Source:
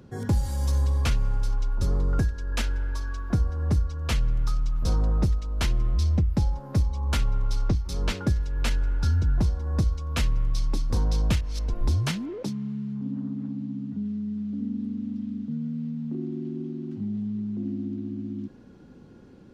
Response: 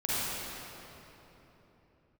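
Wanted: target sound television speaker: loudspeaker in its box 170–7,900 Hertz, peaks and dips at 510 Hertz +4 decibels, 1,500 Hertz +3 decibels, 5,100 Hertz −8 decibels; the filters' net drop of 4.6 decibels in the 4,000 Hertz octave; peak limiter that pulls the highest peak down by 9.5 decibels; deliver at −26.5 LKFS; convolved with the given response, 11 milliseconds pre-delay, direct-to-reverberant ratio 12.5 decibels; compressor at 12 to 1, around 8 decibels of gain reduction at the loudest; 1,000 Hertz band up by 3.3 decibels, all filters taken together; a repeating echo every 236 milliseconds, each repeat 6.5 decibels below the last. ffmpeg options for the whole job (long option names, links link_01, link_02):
-filter_complex "[0:a]equalizer=frequency=1000:width_type=o:gain=3.5,equalizer=frequency=4000:width_type=o:gain=-4,acompressor=threshold=-27dB:ratio=12,alimiter=level_in=3.5dB:limit=-24dB:level=0:latency=1,volume=-3.5dB,aecho=1:1:236|472|708|944|1180|1416:0.473|0.222|0.105|0.0491|0.0231|0.0109,asplit=2[link_01][link_02];[1:a]atrim=start_sample=2205,adelay=11[link_03];[link_02][link_03]afir=irnorm=-1:irlink=0,volume=-22.5dB[link_04];[link_01][link_04]amix=inputs=2:normalize=0,highpass=frequency=170:width=0.5412,highpass=frequency=170:width=1.3066,equalizer=frequency=510:width_type=q:width=4:gain=4,equalizer=frequency=1500:width_type=q:width=4:gain=3,equalizer=frequency=5100:width_type=q:width=4:gain=-8,lowpass=frequency=7900:width=0.5412,lowpass=frequency=7900:width=1.3066,volume=11dB"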